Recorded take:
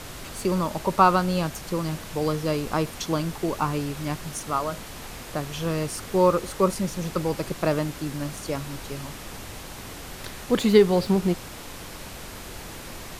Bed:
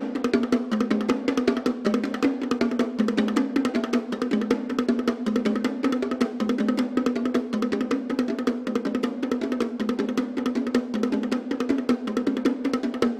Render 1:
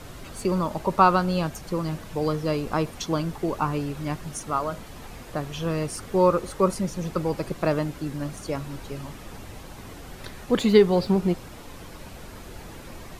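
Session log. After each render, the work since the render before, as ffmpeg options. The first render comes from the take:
ffmpeg -i in.wav -af "afftdn=noise_reduction=8:noise_floor=-40" out.wav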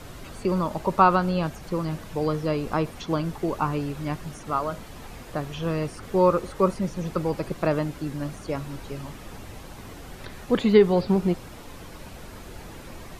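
ffmpeg -i in.wav -filter_complex "[0:a]acrossover=split=3700[link_01][link_02];[link_02]acompressor=threshold=-47dB:ratio=4:attack=1:release=60[link_03];[link_01][link_03]amix=inputs=2:normalize=0" out.wav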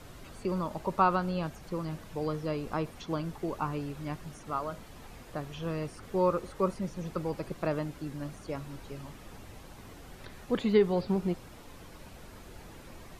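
ffmpeg -i in.wav -af "volume=-7.5dB" out.wav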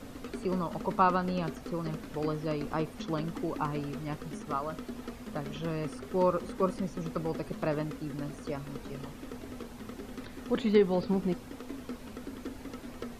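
ffmpeg -i in.wav -i bed.wav -filter_complex "[1:a]volume=-18.5dB[link_01];[0:a][link_01]amix=inputs=2:normalize=0" out.wav

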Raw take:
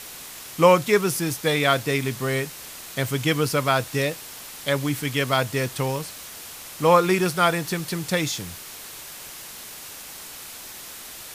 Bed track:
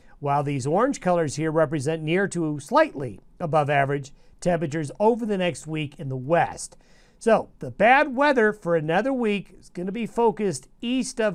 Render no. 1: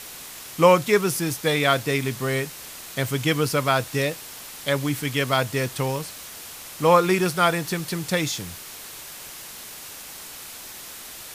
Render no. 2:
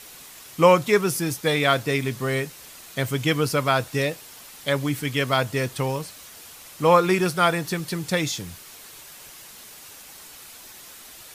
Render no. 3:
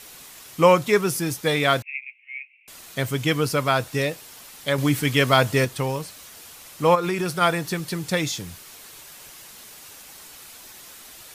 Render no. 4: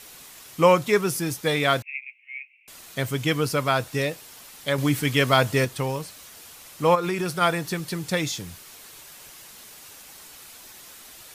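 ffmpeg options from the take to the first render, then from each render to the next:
ffmpeg -i in.wav -af anull out.wav
ffmpeg -i in.wav -af "afftdn=noise_reduction=6:noise_floor=-40" out.wav
ffmpeg -i in.wav -filter_complex "[0:a]asettb=1/sr,asplit=3[link_01][link_02][link_03];[link_01]atrim=end=1.824[link_04];[link_02]atrim=start=1.82:end=2.68,asetpts=PTS-STARTPTS,afade=type=in:duration=0.004:curve=qsin,afade=type=out:start_time=0.856:duration=0.004:curve=qsin,asuperpass=centerf=2400:order=8:qfactor=4[link_05];[link_03]atrim=start=2.676[link_06];[link_04][link_05]acrossfade=duration=0.004:curve1=hsin:curve2=qsin[link_07];[link_07][link_06]acrossfade=duration=0.004:curve1=qsin:curve2=hsin,asettb=1/sr,asplit=3[link_08][link_09][link_10];[link_08]atrim=end=4.784[link_11];[link_09]atrim=start=4.78:end=5.65,asetpts=PTS-STARTPTS,afade=type=in:duration=0.004:curve=qsin,afade=type=out:start_time=0.866:duration=0.004:curve=qsin,acontrast=21[link_12];[link_10]atrim=start=5.646[link_13];[link_11][link_12]acrossfade=duration=0.004:curve1=hsin:curve2=qsin[link_14];[link_14][link_13]acrossfade=duration=0.004:curve1=qsin:curve2=hsin,asplit=3[link_15][link_16][link_17];[link_15]afade=type=out:start_time=6.94:duration=0.02[link_18];[link_16]acompressor=threshold=-20dB:ratio=6:attack=3.2:release=140:knee=1:detection=peak,afade=type=in:start_time=6.94:duration=0.02,afade=type=out:start_time=7.4:duration=0.02[link_19];[link_17]afade=type=in:start_time=7.4:duration=0.02[link_20];[link_18][link_19][link_20]amix=inputs=3:normalize=0" out.wav
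ffmpeg -i in.wav -af "volume=-1.5dB" out.wav

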